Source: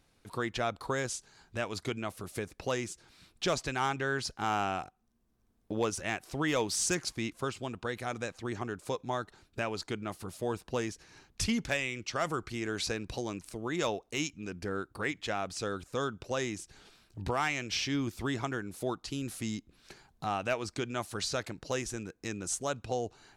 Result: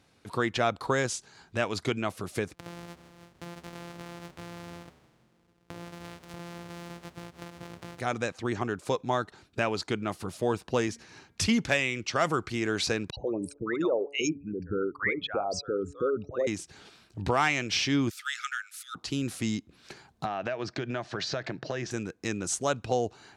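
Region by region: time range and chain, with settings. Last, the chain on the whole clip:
0:02.54–0:08.00: samples sorted by size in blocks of 256 samples + downward compressor 16 to 1, threshold −44 dBFS + echo with shifted repeats 160 ms, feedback 60%, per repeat −100 Hz, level −16 dB
0:10.87–0:11.51: high-pass filter 47 Hz + hum removal 231.9 Hz, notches 10
0:13.10–0:16.47: spectral envelope exaggerated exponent 3 + hum removal 142.1 Hz, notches 9 + multiband delay without the direct sound highs, lows 70 ms, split 930 Hz
0:18.10–0:18.95: linear-phase brick-wall high-pass 1,200 Hz + high-shelf EQ 9,600 Hz +8.5 dB
0:20.25–0:21.91: loudspeaker in its box 120–5,500 Hz, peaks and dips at 130 Hz +9 dB, 360 Hz +4 dB, 650 Hz +8 dB, 1,700 Hz +8 dB + downward compressor 16 to 1, threshold −33 dBFS
whole clip: high-pass filter 81 Hz; high-shelf EQ 11,000 Hz −11.5 dB; level +6 dB

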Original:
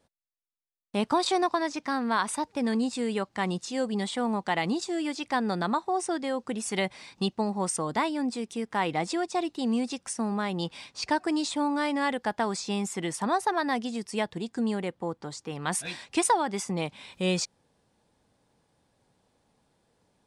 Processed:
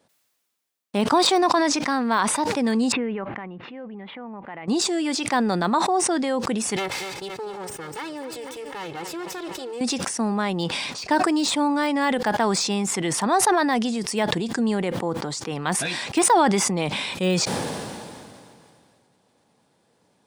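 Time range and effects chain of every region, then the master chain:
0:02.92–0:04.68: one scale factor per block 7 bits + Butterworth low-pass 2,500 Hz + downward compressor 2.5 to 1, threshold −47 dBFS
0:06.76–0:09.81: lower of the sound and its delayed copy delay 2.3 ms + repeating echo 241 ms, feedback 44%, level −15 dB + downward compressor 2 to 1, threshold −43 dBFS
whole clip: de-essing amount 90%; high-pass filter 130 Hz; level that may fall only so fast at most 25 dB per second; level +5.5 dB

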